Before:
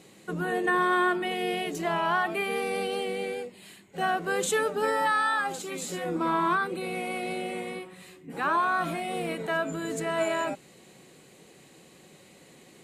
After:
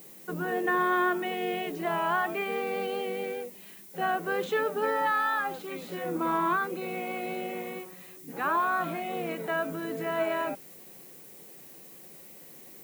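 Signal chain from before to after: high-pass 170 Hz 6 dB/octave; distance through air 250 m; added noise violet -50 dBFS

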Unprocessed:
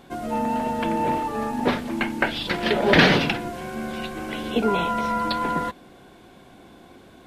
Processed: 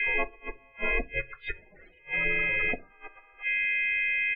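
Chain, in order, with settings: pre-echo 268 ms -20.5 dB; time stretch by phase-locked vocoder 0.6×; whistle 2.3 kHz -31 dBFS; ring modulator 210 Hz; inverted gate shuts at -16 dBFS, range -32 dB; loudest bins only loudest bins 16; graphic EQ 125/250/1000/2000/4000/8000 Hz -5/-3/-6/+10/+7/-12 dB; harmony voices -4 st -8 dB, +4 st -18 dB; on a send at -12 dB: reverberation RT60 0.25 s, pre-delay 4 ms

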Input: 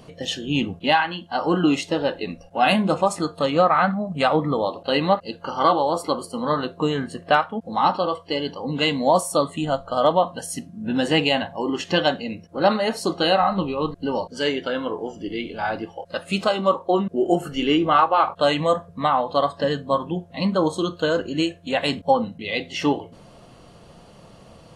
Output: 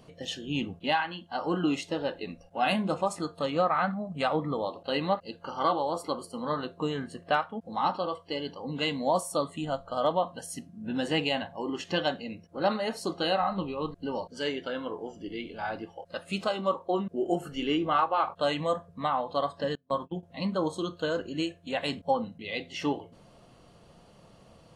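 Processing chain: 19.75–20.23 s: gate -26 dBFS, range -29 dB; trim -8.5 dB

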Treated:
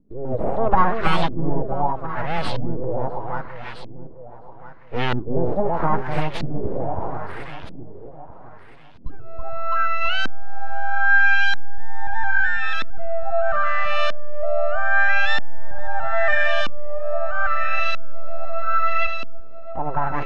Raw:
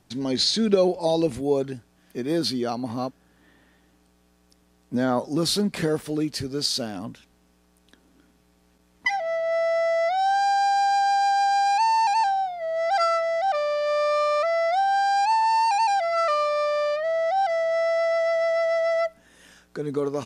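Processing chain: full-wave rectifier; echo whose repeats swap between lows and highs 329 ms, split 1 kHz, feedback 67%, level -3 dB; LFO low-pass saw up 0.78 Hz 240–3800 Hz; trim +3 dB

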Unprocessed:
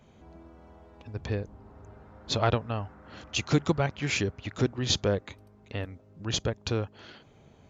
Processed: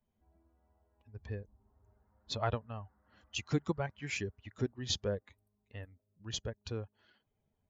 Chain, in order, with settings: expander on every frequency bin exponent 1.5; trim -6.5 dB

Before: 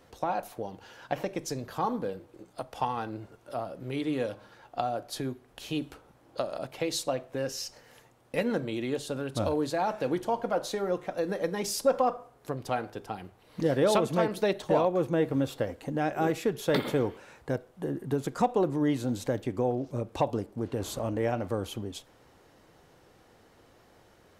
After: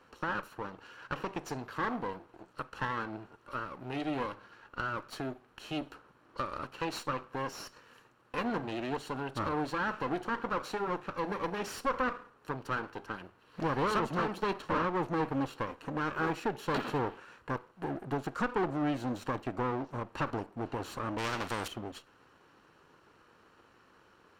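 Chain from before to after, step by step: comb filter that takes the minimum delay 0.7 ms; overdrive pedal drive 16 dB, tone 1.4 kHz, clips at -14 dBFS; 21.18–21.68 s: spectrum-flattening compressor 2:1; trim -5.5 dB

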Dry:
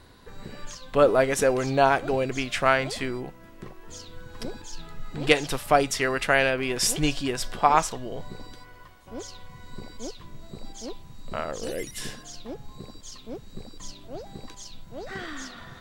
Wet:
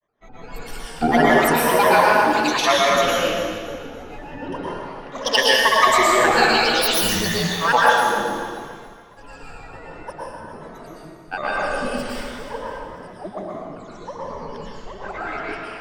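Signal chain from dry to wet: drifting ripple filter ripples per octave 1.2, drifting +0.36 Hz, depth 19 dB; band-stop 4.8 kHz, Q 7.8; de-hum 233.9 Hz, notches 20; gate with hold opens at -32 dBFS; level-controlled noise filter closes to 1 kHz, open at -16.5 dBFS; tone controls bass -10 dB, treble +2 dB; in parallel at -1 dB: compression, threshold -27 dBFS, peak gain reduction 17 dB; on the sum: granulator, pitch spread up and down by 12 st; on a send: thinning echo 284 ms, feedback 37%, level -11 dB; on the sum: plate-style reverb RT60 1.4 s, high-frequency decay 0.8×, pre-delay 100 ms, DRR -5 dB; trim -3 dB

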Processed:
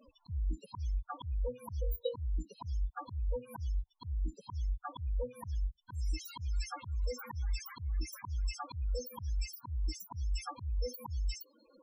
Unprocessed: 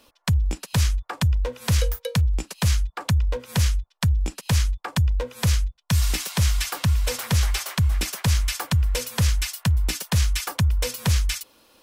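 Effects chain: loudest bins only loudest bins 8; slow attack 794 ms; trim +2.5 dB

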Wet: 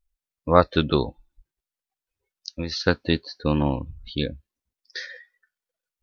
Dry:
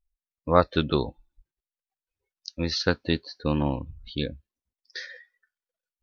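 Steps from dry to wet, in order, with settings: 1.04–2.86 s: compression 3:1, threshold -30 dBFS, peak gain reduction 6.5 dB; trim +3 dB

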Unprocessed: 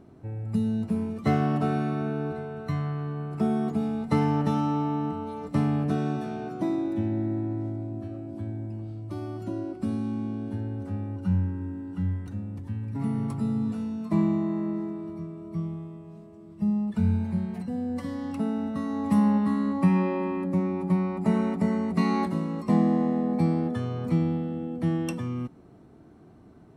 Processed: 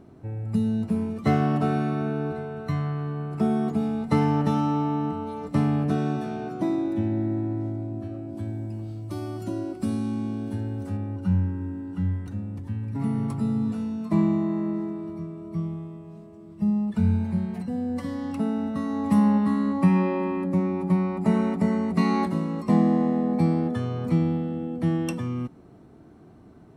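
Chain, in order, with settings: 8.37–10.97 s: treble shelf 4.4 kHz +10.5 dB; trim +2 dB

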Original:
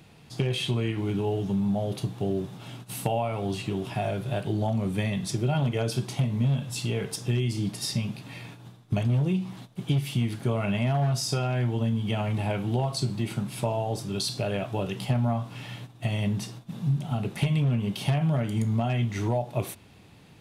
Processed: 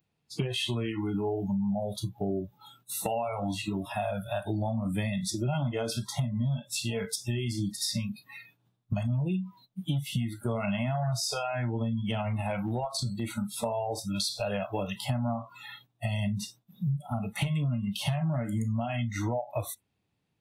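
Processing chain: spectral noise reduction 29 dB; 12.07–13.26 s: transient shaper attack -7 dB, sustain -3 dB; compression 3:1, threshold -32 dBFS, peak gain reduction 9 dB; trim +3.5 dB

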